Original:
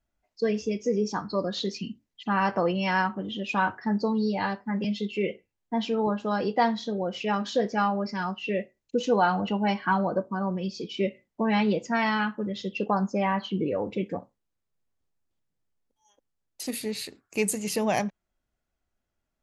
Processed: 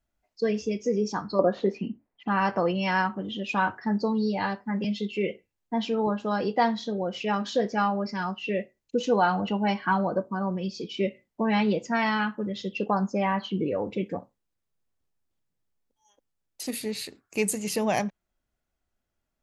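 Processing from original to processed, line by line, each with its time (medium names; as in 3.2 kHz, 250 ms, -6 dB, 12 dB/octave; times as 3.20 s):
1.39–2.28 s: FFT filter 140 Hz 0 dB, 740 Hz +12 dB, 2.4 kHz 0 dB, 3.7 kHz -17 dB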